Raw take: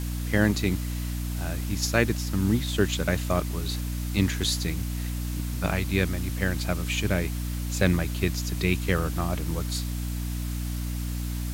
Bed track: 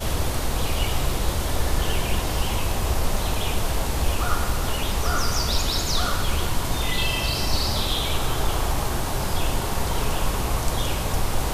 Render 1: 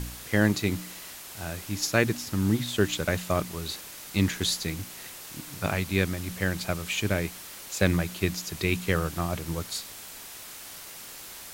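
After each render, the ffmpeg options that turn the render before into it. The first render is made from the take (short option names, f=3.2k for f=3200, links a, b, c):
-af "bandreject=f=60:t=h:w=4,bandreject=f=120:t=h:w=4,bandreject=f=180:t=h:w=4,bandreject=f=240:t=h:w=4,bandreject=f=300:t=h:w=4"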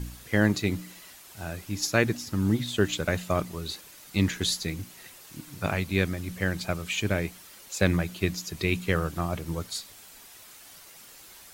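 -af "afftdn=nr=8:nf=-43"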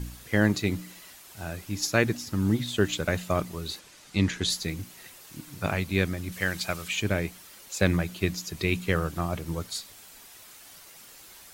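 -filter_complex "[0:a]asettb=1/sr,asplit=3[a][b][c];[a]atrim=end=3.794[d];[b]atrim=start=3.79:end=4.5,asetpts=PTS-STARTPTS,afade=t=in:d=0.004:c=qsin,afade=t=out:st=0.706:d=0.004:c=qsin,lowpass=8.1k[e];[c]atrim=start=4.496[f];[d][e]acrossfade=d=0.004:c1=hsin:c2=qsin[g];[g][f]acrossfade=d=0.004:c1=qsin:c2=hsin,asettb=1/sr,asplit=3[h][i][j];[h]atrim=end=6.324[k];[i]atrim=start=6.32:end=6.88,asetpts=PTS-STARTPTS,afade=t=in:d=0.004:c=qsin,afade=t=out:st=0.556:d=0.004:c=qsin,tiltshelf=f=870:g=-5[l];[j]atrim=start=6.876[m];[k][l]acrossfade=d=0.004:c1=hsin:c2=qsin[n];[n][m]acrossfade=d=0.004:c1=qsin:c2=hsin"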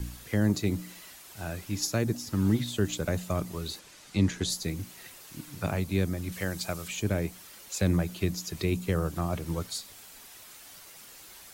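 -filter_complex "[0:a]acrossover=split=240|1100|4800[a][b][c][d];[b]alimiter=limit=-23.5dB:level=0:latency=1[e];[c]acompressor=threshold=-41dB:ratio=6[f];[a][e][f][d]amix=inputs=4:normalize=0"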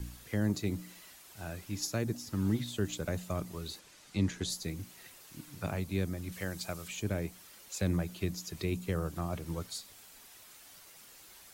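-af "volume=-5.5dB"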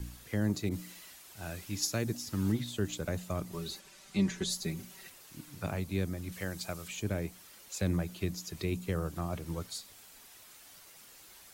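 -filter_complex "[0:a]asettb=1/sr,asplit=3[a][b][c];[a]atrim=end=0.694[d];[b]atrim=start=0.69:end=2.52,asetpts=PTS-STARTPTS,afade=t=in:d=0.004:c=qsin,afade=t=out:st=1.826:d=0.004:c=qsin,adynamicequalizer=threshold=0.002:dfrequency=1800:dqfactor=0.7:tfrequency=1800:tqfactor=0.7:attack=5:release=100:ratio=0.375:range=2:mode=boostabove:tftype=highshelf[e];[c]atrim=start=2.516[f];[d][e]acrossfade=d=0.004:c1=hsin:c2=qsin[g];[g][f]acrossfade=d=0.004:c1=qsin:c2=hsin,asettb=1/sr,asplit=3[h][i][j];[h]atrim=end=3.524[k];[i]atrim=start=3.52:end=5.1,asetpts=PTS-STARTPTS,afade=t=in:d=0.004:c=qsin,afade=t=out:st=1.576:d=0.004:c=qsin,aecho=1:1:5.2:0.77,atrim=end_sample=69678[l];[j]atrim=start=5.096[m];[k][l]acrossfade=d=0.004:c1=hsin:c2=qsin[n];[n][m]acrossfade=d=0.004:c1=qsin:c2=hsin"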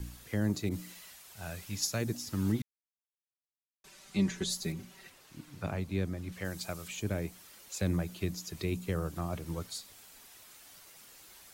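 -filter_complex "[0:a]asettb=1/sr,asplit=3[a][b][c];[a]atrim=end=0.944[d];[b]atrim=start=0.94:end=2.01,asetpts=PTS-STARTPTS,afade=t=in:d=0.004:c=qsin,afade=t=out:st=1.066:d=0.004:c=qsin,equalizer=f=310:w=3.3:g=-9[e];[c]atrim=start=2.006[f];[d][e]acrossfade=d=0.004:c1=hsin:c2=qsin[g];[g][f]acrossfade=d=0.004:c1=qsin:c2=hsin,asettb=1/sr,asplit=3[h][i][j];[h]atrim=end=4.724[k];[i]atrim=start=4.72:end=6.45,asetpts=PTS-STARTPTS,afade=t=in:d=0.004:c=qsin,afade=t=out:st=1.726:d=0.004:c=qsin,highshelf=f=6.5k:g=-10.5[l];[j]atrim=start=6.446[m];[k][l]acrossfade=d=0.004:c1=hsin:c2=qsin[n];[n][m]acrossfade=d=0.004:c1=qsin:c2=hsin,asplit=3[o][p][q];[o]atrim=end=2.62,asetpts=PTS-STARTPTS,afade=t=out:st=2.616:d=0.004:c=hsin[r];[p]atrim=start=2.62:end=3.84,asetpts=PTS-STARTPTS,volume=0[s];[q]atrim=start=3.84,asetpts=PTS-STARTPTS,afade=t=in:d=0.004:c=hsin[t];[r][s][t]concat=n=3:v=0:a=1"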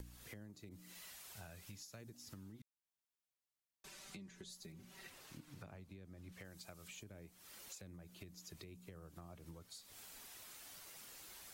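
-af "alimiter=level_in=6.5dB:limit=-24dB:level=0:latency=1:release=420,volume=-6.5dB,acompressor=threshold=-51dB:ratio=10"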